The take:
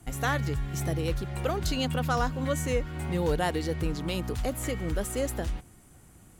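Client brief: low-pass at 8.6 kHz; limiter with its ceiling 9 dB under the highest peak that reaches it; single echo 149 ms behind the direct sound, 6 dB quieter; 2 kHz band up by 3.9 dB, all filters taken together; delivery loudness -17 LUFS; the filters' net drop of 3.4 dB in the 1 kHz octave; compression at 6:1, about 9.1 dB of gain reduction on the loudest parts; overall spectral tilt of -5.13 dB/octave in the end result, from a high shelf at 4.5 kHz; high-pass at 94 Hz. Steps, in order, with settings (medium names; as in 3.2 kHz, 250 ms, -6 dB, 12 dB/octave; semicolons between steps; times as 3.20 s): high-pass 94 Hz; low-pass 8.6 kHz; peaking EQ 1 kHz -7 dB; peaking EQ 2 kHz +9 dB; treble shelf 4.5 kHz -8.5 dB; compression 6:1, threshold -34 dBFS; peak limiter -31.5 dBFS; delay 149 ms -6 dB; trim +23 dB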